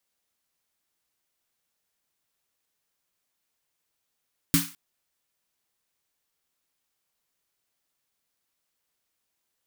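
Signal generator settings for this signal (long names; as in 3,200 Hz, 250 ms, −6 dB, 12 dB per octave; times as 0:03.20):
synth snare length 0.21 s, tones 170 Hz, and 280 Hz, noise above 1,100 Hz, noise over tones −2 dB, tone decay 0.24 s, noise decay 0.37 s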